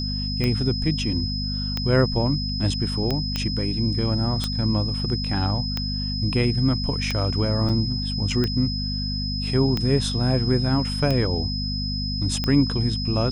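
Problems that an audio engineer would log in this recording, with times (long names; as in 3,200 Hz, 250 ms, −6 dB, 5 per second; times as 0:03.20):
mains hum 50 Hz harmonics 5 −28 dBFS
scratch tick 45 rpm −11 dBFS
whistle 5,100 Hz −29 dBFS
0:03.36: click −11 dBFS
0:07.69–0:07.70: drop-out 5.6 ms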